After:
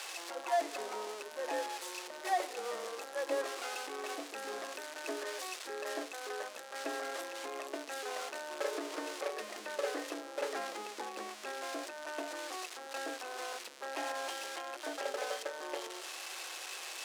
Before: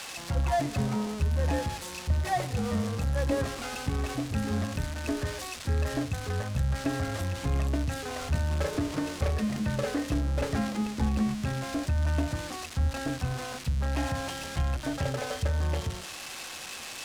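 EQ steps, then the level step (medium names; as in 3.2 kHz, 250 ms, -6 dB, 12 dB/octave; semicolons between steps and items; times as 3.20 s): elliptic high-pass 350 Hz, stop band 60 dB; -3.0 dB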